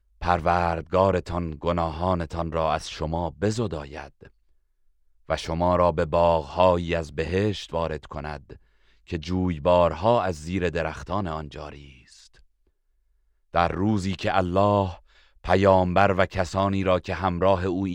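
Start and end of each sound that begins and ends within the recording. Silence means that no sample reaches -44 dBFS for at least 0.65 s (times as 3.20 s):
5.29–12.39 s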